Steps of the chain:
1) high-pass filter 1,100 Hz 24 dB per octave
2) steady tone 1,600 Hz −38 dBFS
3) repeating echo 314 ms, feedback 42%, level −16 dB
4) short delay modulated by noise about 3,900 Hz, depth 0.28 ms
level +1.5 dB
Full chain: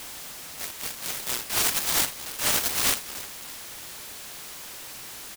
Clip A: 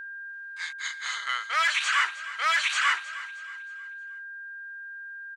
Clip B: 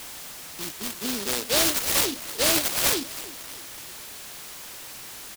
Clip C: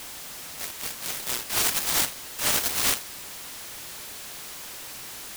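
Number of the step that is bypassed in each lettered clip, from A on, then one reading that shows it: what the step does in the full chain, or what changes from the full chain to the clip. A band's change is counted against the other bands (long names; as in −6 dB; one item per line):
4, 8 kHz band −14.5 dB
1, 250 Hz band +7.5 dB
3, change in momentary loudness spread −1 LU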